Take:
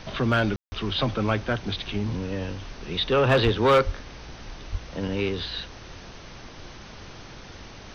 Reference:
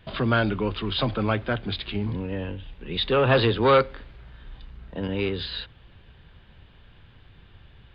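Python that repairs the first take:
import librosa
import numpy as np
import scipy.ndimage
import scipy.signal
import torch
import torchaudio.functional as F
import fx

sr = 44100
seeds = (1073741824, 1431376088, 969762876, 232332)

y = fx.fix_declip(x, sr, threshold_db=-12.5)
y = fx.fix_deplosive(y, sr, at_s=(3.44, 3.85, 4.71))
y = fx.fix_ambience(y, sr, seeds[0], print_start_s=7.4, print_end_s=7.9, start_s=0.56, end_s=0.72)
y = fx.noise_reduce(y, sr, print_start_s=7.4, print_end_s=7.9, reduce_db=9.0)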